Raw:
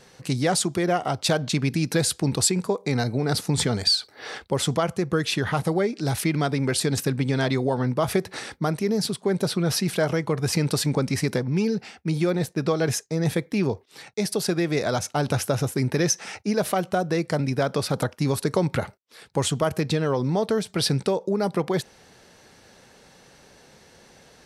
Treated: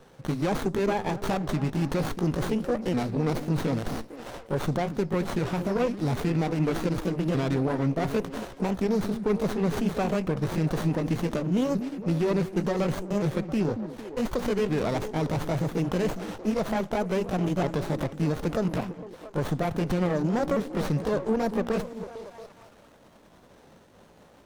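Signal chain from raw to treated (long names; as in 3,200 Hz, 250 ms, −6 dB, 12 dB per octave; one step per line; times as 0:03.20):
pitch shifter swept by a sawtooth +4 semitones, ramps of 1,469 ms
brickwall limiter −17 dBFS, peak gain reduction 9 dB
on a send: echo through a band-pass that steps 227 ms, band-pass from 230 Hz, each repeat 0.7 octaves, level −7 dB
on the sum: windowed peak hold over 17 samples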